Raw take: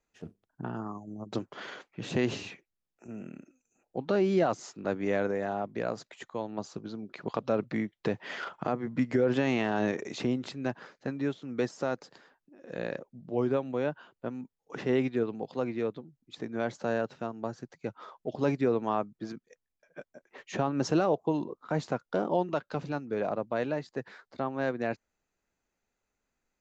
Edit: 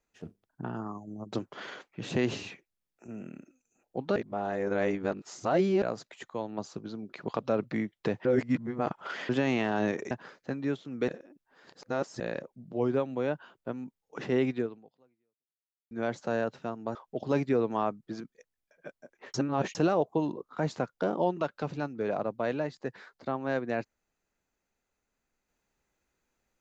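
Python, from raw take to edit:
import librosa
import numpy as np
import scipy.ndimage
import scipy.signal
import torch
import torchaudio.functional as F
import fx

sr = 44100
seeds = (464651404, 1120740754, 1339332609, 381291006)

y = fx.edit(x, sr, fx.reverse_span(start_s=4.16, length_s=1.66),
    fx.reverse_span(start_s=8.25, length_s=1.04),
    fx.cut(start_s=10.11, length_s=0.57),
    fx.reverse_span(start_s=11.65, length_s=1.12),
    fx.fade_out_span(start_s=15.16, length_s=1.32, curve='exp'),
    fx.cut(start_s=17.52, length_s=0.55),
    fx.reverse_span(start_s=20.46, length_s=0.41), tone=tone)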